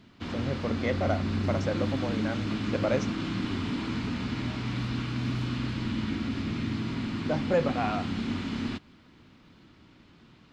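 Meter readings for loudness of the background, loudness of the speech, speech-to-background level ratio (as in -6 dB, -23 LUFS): -31.5 LUFS, -32.0 LUFS, -0.5 dB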